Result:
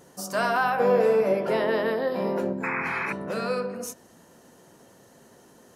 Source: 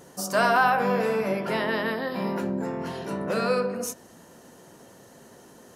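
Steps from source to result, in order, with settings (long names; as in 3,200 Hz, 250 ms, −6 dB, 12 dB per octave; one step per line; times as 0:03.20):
0:00.79–0:02.53: parametric band 500 Hz +10 dB 1.2 octaves
0:02.63–0:03.13: sound drawn into the spectrogram noise 800–2,600 Hz −26 dBFS
level −3.5 dB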